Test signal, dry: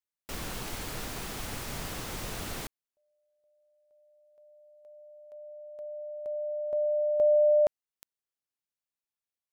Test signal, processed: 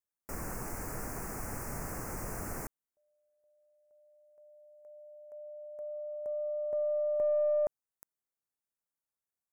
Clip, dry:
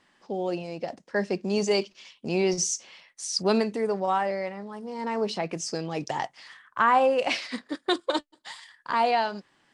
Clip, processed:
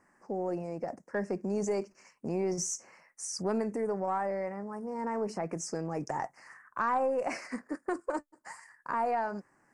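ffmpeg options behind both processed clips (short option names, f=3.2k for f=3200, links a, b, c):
-af "asuperstop=centerf=3500:order=4:qfactor=0.75,aeval=exprs='0.299*(cos(1*acos(clip(val(0)/0.299,-1,1)))-cos(1*PI/2))+0.0133*(cos(2*acos(clip(val(0)/0.299,-1,1)))-cos(2*PI/2))+0.0168*(cos(3*acos(clip(val(0)/0.299,-1,1)))-cos(3*PI/2))+0.00668*(cos(5*acos(clip(val(0)/0.299,-1,1)))-cos(5*PI/2))+0.00237*(cos(6*acos(clip(val(0)/0.299,-1,1)))-cos(6*PI/2))':c=same,acompressor=threshold=-31dB:ratio=2:attack=2.9:release=106:knee=6:detection=peak"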